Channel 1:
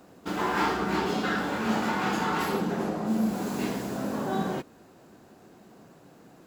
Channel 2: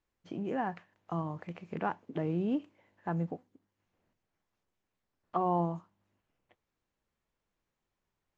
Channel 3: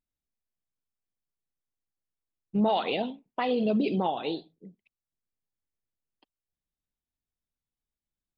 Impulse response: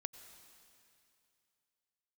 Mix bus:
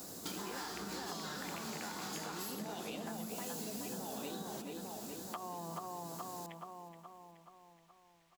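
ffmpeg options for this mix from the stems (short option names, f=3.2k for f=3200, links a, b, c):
-filter_complex "[0:a]acompressor=threshold=-45dB:ratio=2,aexciter=amount=3.5:drive=9.1:freq=3.8k,volume=1dB,asplit=2[a][b];[b]volume=-19.5dB[c];[1:a]acompressor=threshold=-32dB:ratio=6,equalizer=f=2.6k:w=0.33:g=14,volume=-1.5dB,asplit=2[d][e];[e]volume=-8dB[f];[2:a]volume=-3dB,asplit=2[g][h];[h]volume=-12dB[i];[d][g]amix=inputs=2:normalize=0,highshelf=f=3.8k:g=11.5,acompressor=threshold=-35dB:ratio=6,volume=0dB[j];[c][f][i]amix=inputs=3:normalize=0,aecho=0:1:424|848|1272|1696|2120|2544|2968|3392:1|0.53|0.281|0.149|0.0789|0.0418|0.0222|0.0117[k];[a][j][k]amix=inputs=3:normalize=0,acompressor=threshold=-40dB:ratio=6"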